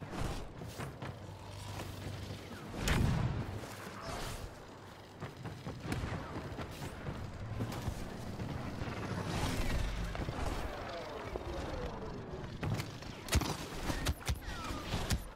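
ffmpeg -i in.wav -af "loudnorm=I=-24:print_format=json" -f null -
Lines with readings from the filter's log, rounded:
"input_i" : "-40.0",
"input_tp" : "-18.9",
"input_lra" : "3.8",
"input_thresh" : "-50.0",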